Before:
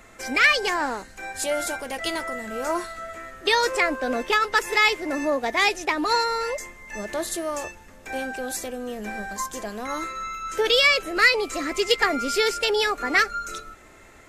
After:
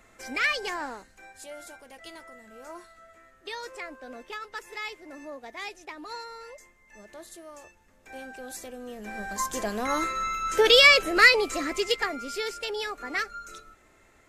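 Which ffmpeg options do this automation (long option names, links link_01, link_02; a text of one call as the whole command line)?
ffmpeg -i in.wav -af "volume=11.5dB,afade=type=out:start_time=0.74:duration=0.65:silence=0.354813,afade=type=in:start_time=7.64:duration=1.42:silence=0.316228,afade=type=in:start_time=9.06:duration=0.57:silence=0.334965,afade=type=out:start_time=11.04:duration=1.12:silence=0.237137" out.wav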